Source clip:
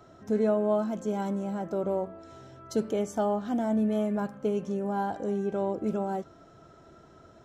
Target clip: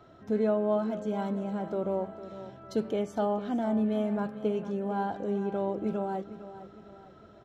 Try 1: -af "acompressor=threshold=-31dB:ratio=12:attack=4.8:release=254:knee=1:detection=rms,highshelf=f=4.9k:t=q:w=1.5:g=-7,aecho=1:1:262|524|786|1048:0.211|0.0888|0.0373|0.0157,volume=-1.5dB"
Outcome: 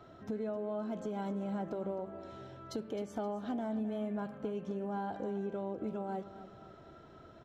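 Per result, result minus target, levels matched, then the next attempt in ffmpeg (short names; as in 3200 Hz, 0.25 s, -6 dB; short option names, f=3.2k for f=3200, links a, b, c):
compressor: peak gain reduction +12 dB; echo 0.192 s early
-af "highshelf=f=4.9k:t=q:w=1.5:g=-7,aecho=1:1:262|524|786|1048:0.211|0.0888|0.0373|0.0157,volume=-1.5dB"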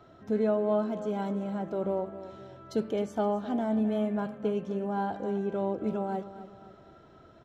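echo 0.192 s early
-af "highshelf=f=4.9k:t=q:w=1.5:g=-7,aecho=1:1:454|908|1362|1816:0.211|0.0888|0.0373|0.0157,volume=-1.5dB"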